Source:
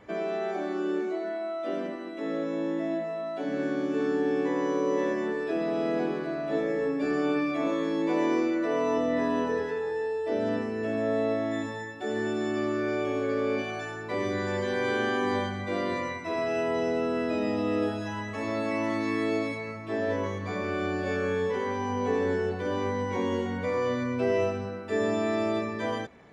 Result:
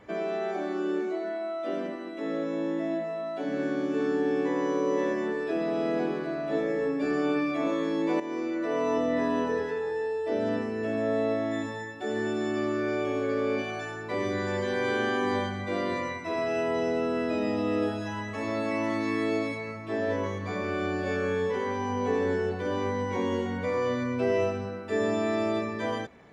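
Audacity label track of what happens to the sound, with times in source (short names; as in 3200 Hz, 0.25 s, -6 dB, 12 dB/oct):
8.200000	9.050000	fade in equal-power, from -12.5 dB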